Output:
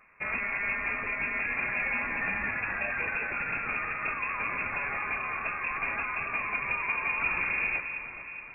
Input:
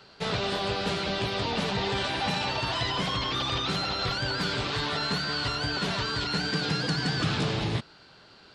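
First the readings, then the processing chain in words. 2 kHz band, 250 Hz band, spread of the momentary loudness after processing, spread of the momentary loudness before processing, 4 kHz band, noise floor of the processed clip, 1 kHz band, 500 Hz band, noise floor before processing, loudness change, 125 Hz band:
+5.0 dB, -13.0 dB, 4 LU, 2 LU, under -30 dB, -43 dBFS, -3.0 dB, -10.5 dB, -54 dBFS, -1.5 dB, -17.5 dB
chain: in parallel at -11 dB: bit crusher 7-bit; on the sum: echo whose repeats swap between lows and highs 210 ms, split 1.1 kHz, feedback 73%, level -7 dB; frequency inversion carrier 2.6 kHz; trim -4.5 dB

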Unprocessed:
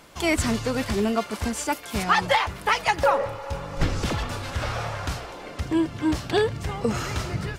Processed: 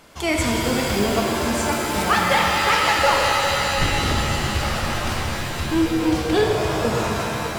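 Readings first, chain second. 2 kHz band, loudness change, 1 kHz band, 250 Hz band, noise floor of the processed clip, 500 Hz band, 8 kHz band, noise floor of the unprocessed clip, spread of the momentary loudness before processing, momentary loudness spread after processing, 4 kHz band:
+6.5 dB, +5.5 dB, +5.0 dB, +4.0 dB, -27 dBFS, +4.5 dB, +7.0 dB, -40 dBFS, 9 LU, 7 LU, +8.0 dB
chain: fade out at the end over 0.73 s; pitch-shifted reverb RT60 3.5 s, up +7 st, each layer -2 dB, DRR -0.5 dB

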